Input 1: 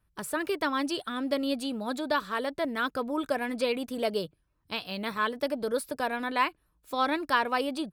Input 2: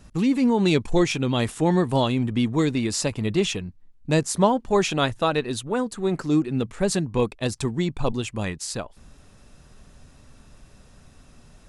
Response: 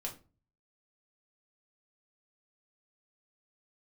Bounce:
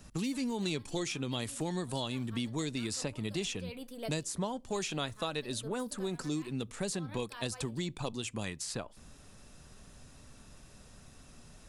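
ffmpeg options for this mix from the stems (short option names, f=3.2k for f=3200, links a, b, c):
-filter_complex "[0:a]volume=-13.5dB,asplit=2[a][b];[b]volume=-9.5dB[c];[1:a]volume=-4dB,asplit=3[d][e][f];[e]volume=-22.5dB[g];[f]apad=whole_len=349653[h];[a][h]sidechaincompress=threshold=-39dB:ratio=8:attack=16:release=214[i];[2:a]atrim=start_sample=2205[j];[c][g]amix=inputs=2:normalize=0[k];[k][j]afir=irnorm=-1:irlink=0[l];[i][d][l]amix=inputs=3:normalize=0,highshelf=f=4.4k:g=6,acrossover=split=92|3200[m][n][o];[m]acompressor=threshold=-53dB:ratio=4[p];[n]acompressor=threshold=-35dB:ratio=4[q];[o]acompressor=threshold=-40dB:ratio=4[r];[p][q][r]amix=inputs=3:normalize=0"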